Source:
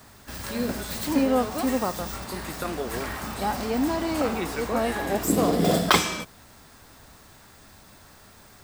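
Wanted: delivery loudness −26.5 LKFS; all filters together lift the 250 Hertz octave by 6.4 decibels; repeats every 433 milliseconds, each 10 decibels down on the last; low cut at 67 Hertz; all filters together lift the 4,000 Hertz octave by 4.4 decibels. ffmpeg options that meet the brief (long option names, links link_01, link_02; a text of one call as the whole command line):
ffmpeg -i in.wav -af "highpass=67,equalizer=frequency=250:width_type=o:gain=7.5,equalizer=frequency=4000:width_type=o:gain=5.5,aecho=1:1:433|866|1299|1732:0.316|0.101|0.0324|0.0104,volume=-5dB" out.wav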